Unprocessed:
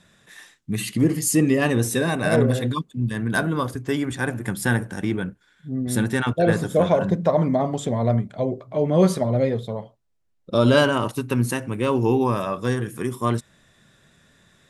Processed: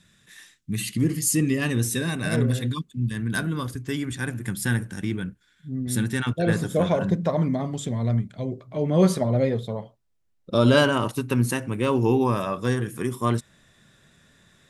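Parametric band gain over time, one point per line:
parametric band 680 Hz 1.9 octaves
0:06.08 −12 dB
0:06.67 −5 dB
0:07.22 −5 dB
0:07.74 −12 dB
0:08.45 −12 dB
0:09.09 −2 dB

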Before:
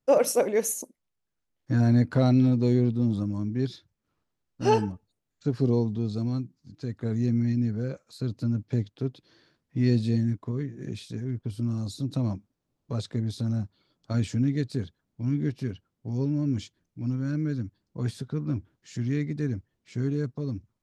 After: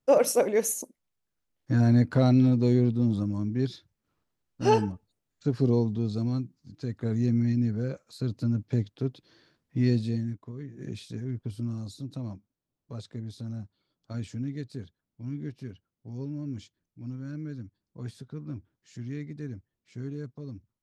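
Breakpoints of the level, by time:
0:09.79 0 dB
0:10.56 −10 dB
0:10.81 −2 dB
0:11.46 −2 dB
0:12.18 −8.5 dB

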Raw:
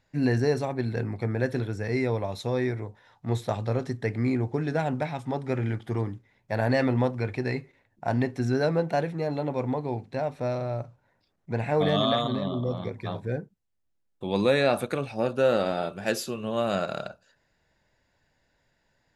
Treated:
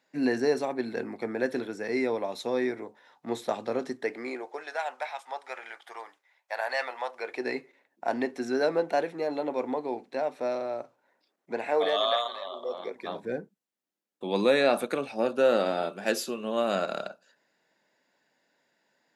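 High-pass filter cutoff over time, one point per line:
high-pass filter 24 dB per octave
0:03.87 230 Hz
0:04.76 690 Hz
0:07.07 690 Hz
0:07.48 270 Hz
0:11.52 270 Hz
0:12.37 690 Hz
0:13.22 210 Hz

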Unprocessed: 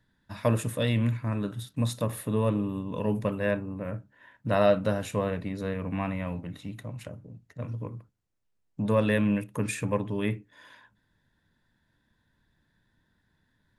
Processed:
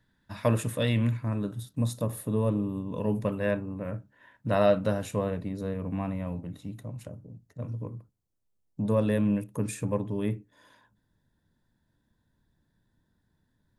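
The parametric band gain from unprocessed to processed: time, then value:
parametric band 2,200 Hz 2 octaves
0:00.98 0 dB
0:01.55 −9.5 dB
0:02.75 −9.5 dB
0:03.38 −2.5 dB
0:04.89 −2.5 dB
0:05.59 −10 dB

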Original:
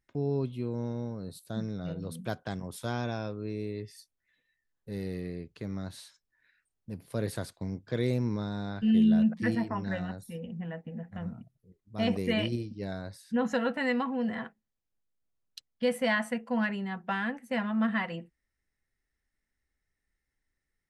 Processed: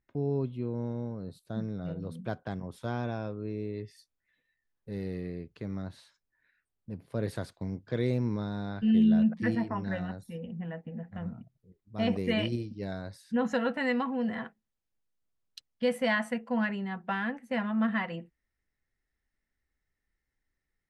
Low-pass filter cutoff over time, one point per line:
low-pass filter 6 dB per octave
1,800 Hz
from 0:03.74 3,100 Hz
from 0:05.82 1,800 Hz
from 0:07.23 3,700 Hz
from 0:12.27 7,000 Hz
from 0:16.39 4,000 Hz

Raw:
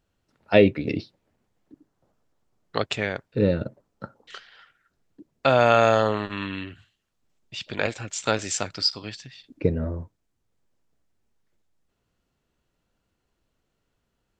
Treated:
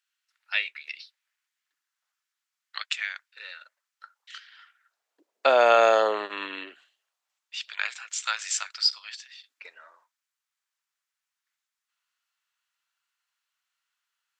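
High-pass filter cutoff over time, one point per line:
high-pass filter 24 dB per octave
0:04.36 1,500 Hz
0:05.49 380 Hz
0:06.70 380 Hz
0:07.56 1,200 Hz

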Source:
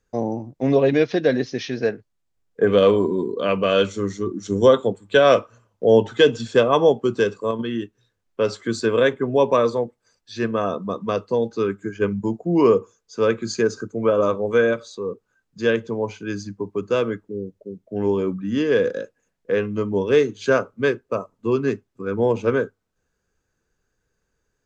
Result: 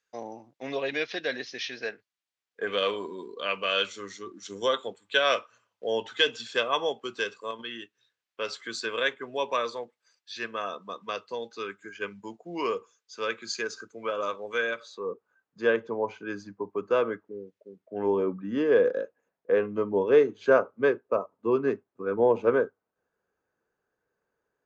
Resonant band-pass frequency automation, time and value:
resonant band-pass, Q 0.79
0:14.71 3,000 Hz
0:15.11 970 Hz
0:17.21 970 Hz
0:17.57 2,500 Hz
0:18.16 750 Hz

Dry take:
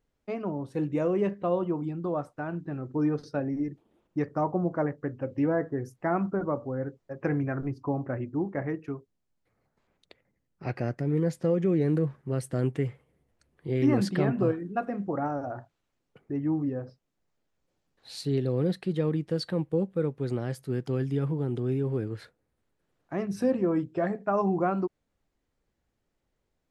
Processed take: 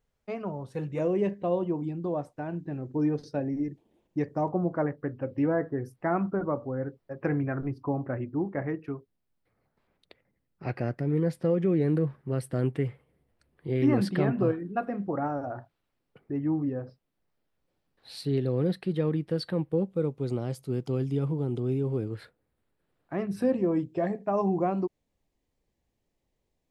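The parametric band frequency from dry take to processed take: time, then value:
parametric band −11 dB 0.42 octaves
300 Hz
from 0:00.99 1,300 Hz
from 0:04.48 6,700 Hz
from 0:19.87 1,700 Hz
from 0:22.14 6,300 Hz
from 0:23.53 1,400 Hz

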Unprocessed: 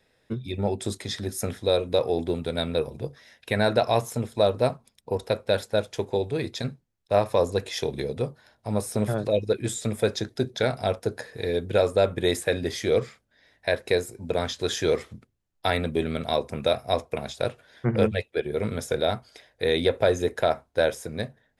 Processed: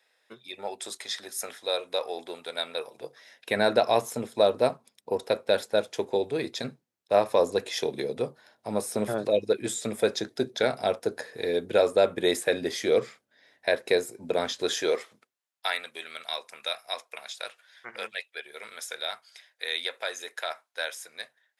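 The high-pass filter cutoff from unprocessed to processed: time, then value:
0:02.84 780 Hz
0:03.57 240 Hz
0:14.62 240 Hz
0:15.08 620 Hz
0:15.90 1,400 Hz

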